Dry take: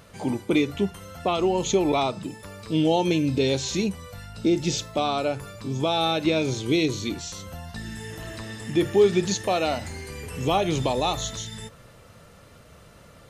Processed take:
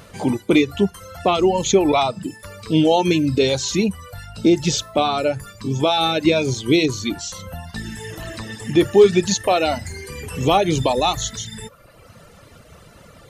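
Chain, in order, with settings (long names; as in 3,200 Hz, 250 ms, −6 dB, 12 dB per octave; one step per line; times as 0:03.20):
reverb reduction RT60 1 s
level +7 dB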